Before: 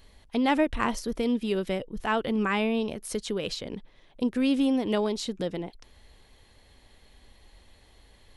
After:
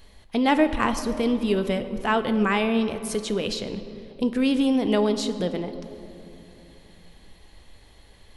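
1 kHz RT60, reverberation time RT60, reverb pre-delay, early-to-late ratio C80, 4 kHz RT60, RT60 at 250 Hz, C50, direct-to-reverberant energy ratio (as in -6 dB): 2.6 s, 2.8 s, 5 ms, 11.5 dB, 1.7 s, 3.6 s, 11.0 dB, 9.0 dB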